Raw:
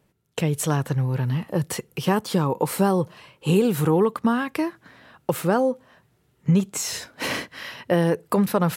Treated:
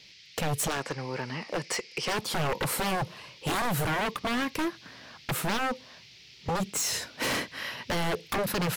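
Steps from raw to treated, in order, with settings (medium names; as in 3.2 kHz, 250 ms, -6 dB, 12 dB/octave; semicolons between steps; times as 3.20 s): band noise 2–5.4 kHz -53 dBFS; 0.68–2.19 s: cabinet simulation 350–8300 Hz, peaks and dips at 2.2 kHz +7 dB, 3.5 kHz -5 dB, 5 kHz +7 dB; wavefolder -23 dBFS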